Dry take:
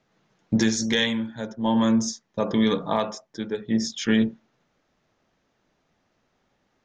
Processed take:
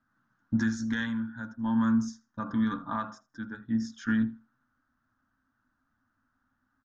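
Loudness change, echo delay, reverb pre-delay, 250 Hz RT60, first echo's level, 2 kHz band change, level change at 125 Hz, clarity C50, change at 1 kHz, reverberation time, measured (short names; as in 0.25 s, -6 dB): -6.0 dB, 80 ms, none, none, -22.0 dB, -5.5 dB, -4.5 dB, none, -6.5 dB, none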